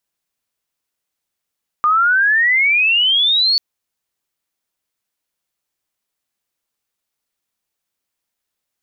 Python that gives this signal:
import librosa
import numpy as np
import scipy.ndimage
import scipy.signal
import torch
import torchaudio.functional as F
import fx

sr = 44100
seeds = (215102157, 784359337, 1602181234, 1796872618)

y = fx.chirp(sr, length_s=1.74, from_hz=1200.0, to_hz=4500.0, law='logarithmic', from_db=-10.5, to_db=-11.5)